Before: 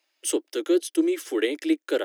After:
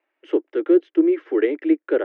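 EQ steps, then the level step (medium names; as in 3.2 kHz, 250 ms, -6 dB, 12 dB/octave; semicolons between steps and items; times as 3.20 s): low-pass 2.1 kHz 24 dB/octave; peaking EQ 390 Hz +4.5 dB 0.79 oct; +2.0 dB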